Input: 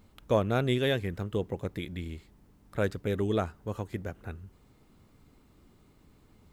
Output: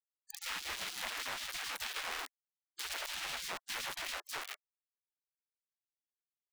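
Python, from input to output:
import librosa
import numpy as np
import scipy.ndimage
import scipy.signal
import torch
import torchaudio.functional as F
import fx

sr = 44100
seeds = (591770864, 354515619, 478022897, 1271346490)

p1 = fx.over_compress(x, sr, threshold_db=-32.0, ratio=-0.5)
p2 = fx.band_shelf(p1, sr, hz=3200.0, db=-9.5, octaves=2.8)
p3 = fx.dispersion(p2, sr, late='lows', ms=81.0, hz=360.0)
p4 = p3 + fx.echo_feedback(p3, sr, ms=77, feedback_pct=46, wet_db=-23.0, dry=0)
p5 = fx.quant_companded(p4, sr, bits=2)
p6 = fx.high_shelf(p5, sr, hz=6100.0, db=-10.0)
p7 = fx.spec_gate(p6, sr, threshold_db=-25, keep='weak')
p8 = fx.band_squash(p7, sr, depth_pct=70)
y = p8 * librosa.db_to_amplitude(2.5)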